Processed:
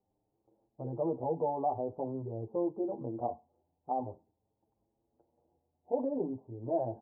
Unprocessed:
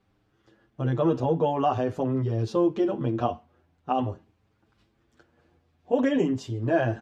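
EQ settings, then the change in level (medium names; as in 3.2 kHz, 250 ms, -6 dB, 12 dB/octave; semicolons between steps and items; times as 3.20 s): Chebyshev low-pass 890 Hz, order 5; bass shelf 320 Hz -12 dB; -4.0 dB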